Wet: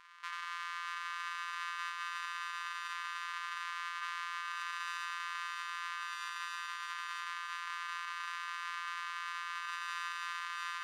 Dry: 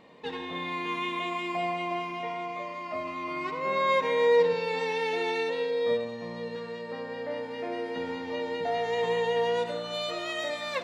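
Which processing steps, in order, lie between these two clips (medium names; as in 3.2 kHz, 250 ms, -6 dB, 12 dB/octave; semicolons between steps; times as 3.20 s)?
sorted samples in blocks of 256 samples; distance through air 56 m; feedback echo behind a high-pass 622 ms, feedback 59%, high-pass 4 kHz, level -6 dB; reverberation, pre-delay 36 ms, DRR 6 dB; peak limiter -29 dBFS, peak gain reduction 16.5 dB; brick-wall FIR high-pass 910 Hz; treble shelf 3.7 kHz -11 dB; trim +6 dB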